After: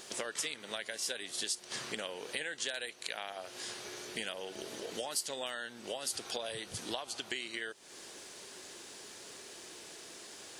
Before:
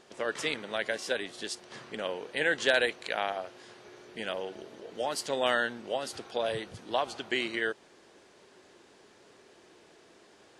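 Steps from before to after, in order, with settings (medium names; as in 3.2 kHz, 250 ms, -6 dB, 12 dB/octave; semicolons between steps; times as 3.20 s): treble shelf 2.4 kHz +10 dB; compression 12:1, threshold -39 dBFS, peak gain reduction 22 dB; treble shelf 6.8 kHz +11 dB; trim +2.5 dB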